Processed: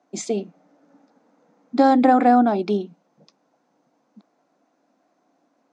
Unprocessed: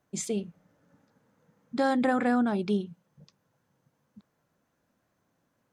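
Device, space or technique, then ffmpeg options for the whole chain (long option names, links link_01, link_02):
television speaker: -af "highpass=frequency=220:width=0.5412,highpass=frequency=220:width=1.3066,equalizer=frequency=290:width_type=q:width=4:gain=8,equalizer=frequency=720:width_type=q:width=4:gain=10,equalizer=frequency=1700:width_type=q:width=4:gain=-5,equalizer=frequency=3100:width_type=q:width=4:gain=-5,lowpass=frequency=6600:width=0.5412,lowpass=frequency=6600:width=1.3066,volume=6.5dB"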